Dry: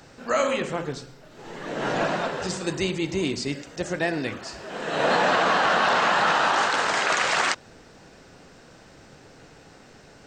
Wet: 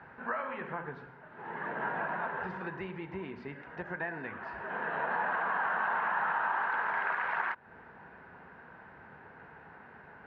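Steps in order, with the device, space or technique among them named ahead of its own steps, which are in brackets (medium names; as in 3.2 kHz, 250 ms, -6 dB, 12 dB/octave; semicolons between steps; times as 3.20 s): bass amplifier (compression 4:1, threshold -32 dBFS, peak gain reduction 12.5 dB; cabinet simulation 73–2200 Hz, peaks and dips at 120 Hz -7 dB, 300 Hz -8 dB, 550 Hz -5 dB, 940 Hz +10 dB, 1.6 kHz +9 dB); trim -3.5 dB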